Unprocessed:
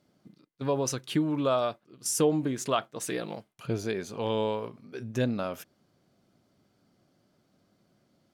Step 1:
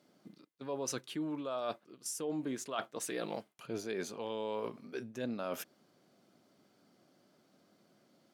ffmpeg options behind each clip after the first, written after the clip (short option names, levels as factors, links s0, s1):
-af "highpass=210,areverse,acompressor=threshold=0.0158:ratio=16,areverse,volume=1.26"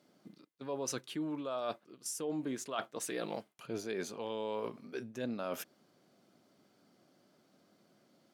-af anull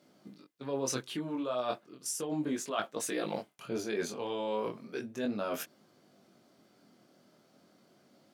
-af "flanger=delay=19:depth=5.4:speed=0.35,volume=2.24"